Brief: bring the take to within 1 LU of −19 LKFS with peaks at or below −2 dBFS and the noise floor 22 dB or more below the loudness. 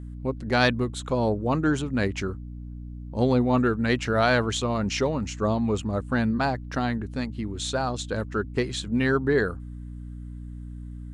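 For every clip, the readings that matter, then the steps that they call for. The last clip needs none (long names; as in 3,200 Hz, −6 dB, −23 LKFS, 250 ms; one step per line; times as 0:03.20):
mains hum 60 Hz; hum harmonics up to 300 Hz; level of the hum −35 dBFS; integrated loudness −25.5 LKFS; sample peak −7.5 dBFS; target loudness −19.0 LKFS
→ hum removal 60 Hz, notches 5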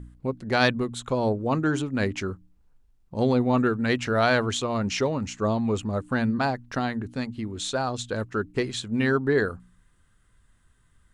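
mains hum none found; integrated loudness −26.0 LKFS; sample peak −7.5 dBFS; target loudness −19.0 LKFS
→ level +7 dB
brickwall limiter −2 dBFS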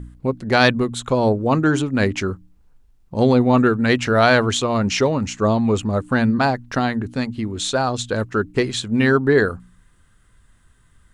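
integrated loudness −19.0 LKFS; sample peak −2.0 dBFS; background noise floor −55 dBFS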